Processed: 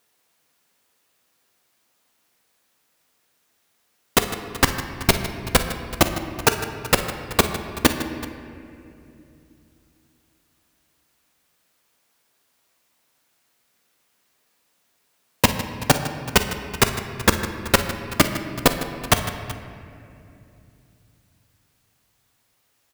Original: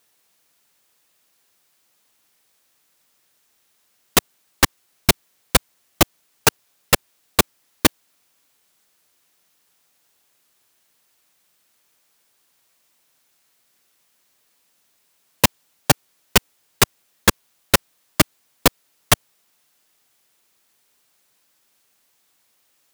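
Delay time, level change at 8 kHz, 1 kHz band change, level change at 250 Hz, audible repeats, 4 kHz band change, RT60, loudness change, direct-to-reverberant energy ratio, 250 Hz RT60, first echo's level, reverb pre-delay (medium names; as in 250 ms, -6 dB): 47 ms, -3.5 dB, +0.5 dB, +1.5 dB, 3, -2.5 dB, 2.7 s, -2.0 dB, 5.5 dB, 3.7 s, -17.0 dB, 4 ms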